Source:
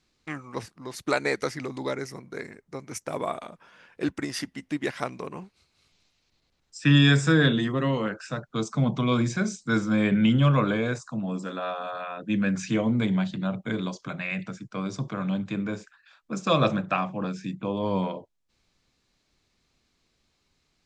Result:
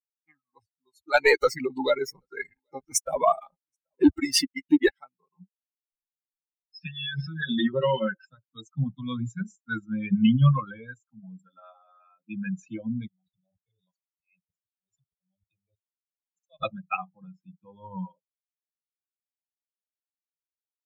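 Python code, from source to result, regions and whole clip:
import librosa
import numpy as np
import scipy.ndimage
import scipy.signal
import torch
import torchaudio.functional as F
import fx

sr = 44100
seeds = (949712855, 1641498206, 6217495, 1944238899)

y = fx.chain(x, sr, fx.leveller(passes=3),
    fx.echo_single(ms=781, db=-19.5), at=(1.14, 4.89))
y = fx.chain(y, sr, fx.brickwall_lowpass(high_hz=5500.0),
    fx.comb(ms=5.3, depth=0.83),
    fx.over_compress(threshold_db=-23.0, ratio=-1.0), at=(5.4, 8.25))
y = fx.chain(y, sr, fx.level_steps(step_db=11),
    fx.auto_swell(attack_ms=166.0),
    fx.fixed_phaser(hz=610.0, stages=4), at=(13.07, 16.63))
y = fx.bin_expand(y, sr, power=3.0)
y = fx.notch(y, sr, hz=3200.0, q=15.0)
y = F.gain(torch.from_numpy(y), 4.5).numpy()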